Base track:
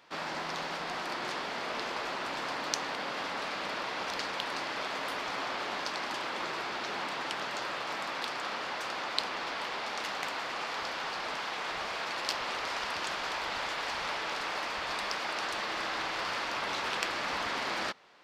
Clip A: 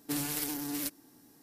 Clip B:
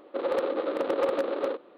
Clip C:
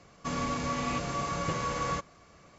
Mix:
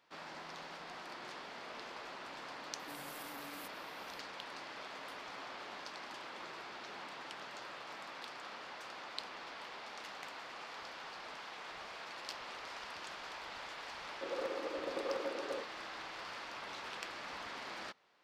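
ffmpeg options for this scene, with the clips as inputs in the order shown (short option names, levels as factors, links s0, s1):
-filter_complex "[0:a]volume=0.251[s0];[1:a]acompressor=threshold=0.00501:ratio=6:attack=3.2:release=140:knee=1:detection=peak,atrim=end=1.42,asetpts=PTS-STARTPTS,volume=0.631,afade=t=in:d=0.004:c=hsin,afade=t=out:st=1.416:d=0.004:c=hsin,adelay=2790[s1];[2:a]atrim=end=1.77,asetpts=PTS-STARTPTS,volume=0.237,afade=t=in:d=0.004:c=hsin,afade=t=out:st=1.766:d=0.004:c=hsin,adelay=14070[s2];[s0][s1][s2]amix=inputs=3:normalize=0"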